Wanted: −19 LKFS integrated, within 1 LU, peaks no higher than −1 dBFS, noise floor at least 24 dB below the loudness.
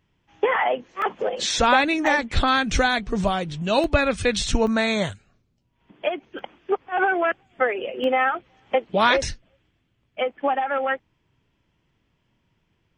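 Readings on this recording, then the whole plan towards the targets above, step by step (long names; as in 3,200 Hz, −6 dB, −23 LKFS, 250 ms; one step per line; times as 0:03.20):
number of dropouts 7; longest dropout 1.2 ms; integrated loudness −22.5 LKFS; sample peak −5.0 dBFS; target loudness −19.0 LKFS
→ repair the gap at 0:01.02/0:02.07/0:03.28/0:03.84/0:04.67/0:06.39/0:08.04, 1.2 ms
level +3.5 dB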